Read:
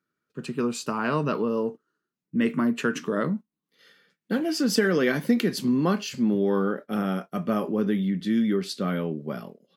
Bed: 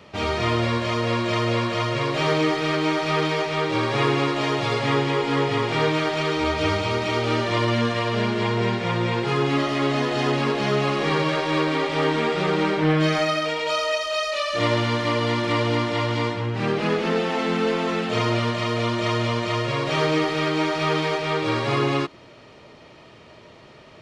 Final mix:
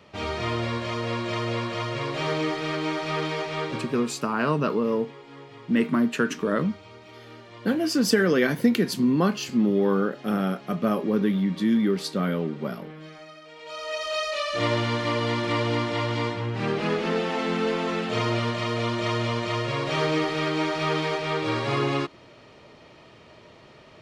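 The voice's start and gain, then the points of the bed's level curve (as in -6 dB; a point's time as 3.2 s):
3.35 s, +1.5 dB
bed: 3.64 s -5.5 dB
4.16 s -23 dB
13.45 s -23 dB
14.06 s -3 dB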